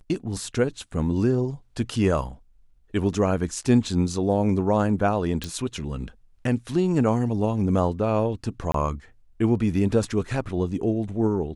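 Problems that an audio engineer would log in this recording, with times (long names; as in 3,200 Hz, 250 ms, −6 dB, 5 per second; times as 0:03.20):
0:05.44: click
0:08.72–0:08.74: drop-out 23 ms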